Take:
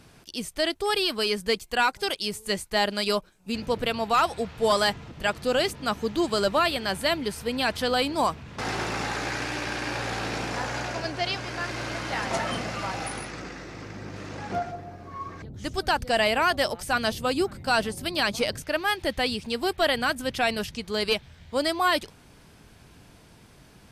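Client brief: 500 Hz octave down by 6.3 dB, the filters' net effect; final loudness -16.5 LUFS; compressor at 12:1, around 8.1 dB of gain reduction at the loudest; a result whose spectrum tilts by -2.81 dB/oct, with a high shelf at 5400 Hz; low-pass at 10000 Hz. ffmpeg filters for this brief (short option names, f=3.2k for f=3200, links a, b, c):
-af "lowpass=10k,equalizer=f=500:t=o:g=-8.5,highshelf=f=5.4k:g=6.5,acompressor=threshold=-27dB:ratio=12,volume=15.5dB"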